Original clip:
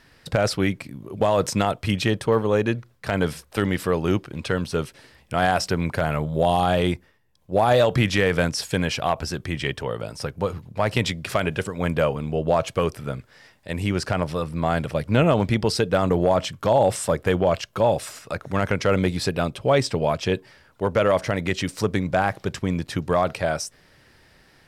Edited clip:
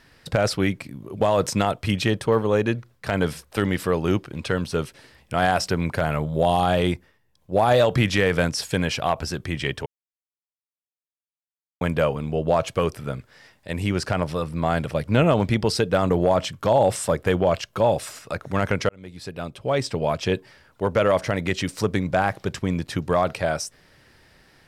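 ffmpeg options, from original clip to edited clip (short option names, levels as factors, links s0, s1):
-filter_complex "[0:a]asplit=4[s0][s1][s2][s3];[s0]atrim=end=9.86,asetpts=PTS-STARTPTS,afade=t=out:st=9.856:d=0.004:c=hsin[s4];[s1]atrim=start=9.86:end=11.81,asetpts=PTS-STARTPTS,volume=0[s5];[s2]atrim=start=11.81:end=18.89,asetpts=PTS-STARTPTS,afade=t=in:d=0.004:c=hsin,afade=t=out:st=7.076:d=0.004:c=hsin[s6];[s3]atrim=start=18.89,asetpts=PTS-STARTPTS,afade=t=in:d=1.36[s7];[s4][s5][s6][s7]concat=n=4:v=0:a=1"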